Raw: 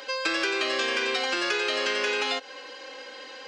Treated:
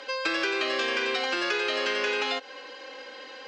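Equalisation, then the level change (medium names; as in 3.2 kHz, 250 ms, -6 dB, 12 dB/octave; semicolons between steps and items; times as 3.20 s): distance through air 72 m; 0.0 dB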